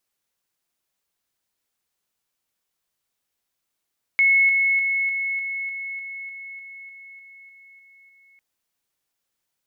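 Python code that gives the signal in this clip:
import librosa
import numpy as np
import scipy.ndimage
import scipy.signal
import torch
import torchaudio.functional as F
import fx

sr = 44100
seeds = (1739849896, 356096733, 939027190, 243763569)

y = fx.level_ladder(sr, hz=2190.0, from_db=-13.5, step_db=-3.0, steps=14, dwell_s=0.3, gap_s=0.0)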